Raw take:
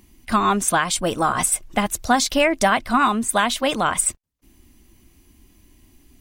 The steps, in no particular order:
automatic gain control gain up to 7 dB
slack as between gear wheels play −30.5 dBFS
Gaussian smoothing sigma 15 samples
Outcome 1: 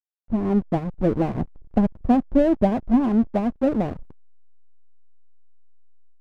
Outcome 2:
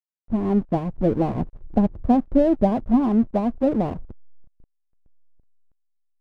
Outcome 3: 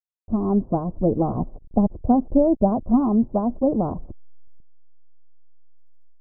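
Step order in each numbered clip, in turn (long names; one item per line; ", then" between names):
Gaussian smoothing, then slack as between gear wheels, then automatic gain control
Gaussian smoothing, then automatic gain control, then slack as between gear wheels
slack as between gear wheels, then Gaussian smoothing, then automatic gain control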